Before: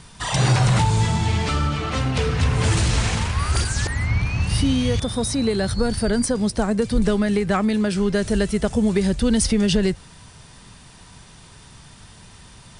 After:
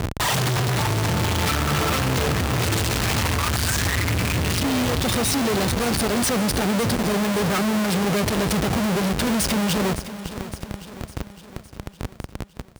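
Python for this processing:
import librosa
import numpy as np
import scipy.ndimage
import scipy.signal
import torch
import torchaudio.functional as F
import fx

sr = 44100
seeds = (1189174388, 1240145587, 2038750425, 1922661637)

y = fx.rider(x, sr, range_db=10, speed_s=0.5)
y = fx.schmitt(y, sr, flips_db=-35.5)
y = scipy.signal.sosfilt(scipy.signal.butter(2, 67.0, 'highpass', fs=sr, output='sos'), y)
y = fx.echo_feedback(y, sr, ms=560, feedback_pct=56, wet_db=-13.5)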